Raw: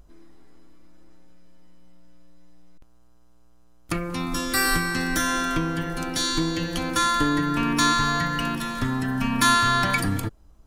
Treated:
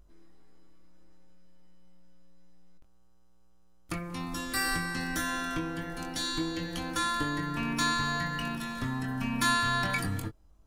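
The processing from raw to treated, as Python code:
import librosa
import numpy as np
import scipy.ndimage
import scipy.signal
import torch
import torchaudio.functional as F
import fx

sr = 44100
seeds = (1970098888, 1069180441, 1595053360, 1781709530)

y = fx.doubler(x, sr, ms=22.0, db=-7.0)
y = F.gain(torch.from_numpy(y), -8.5).numpy()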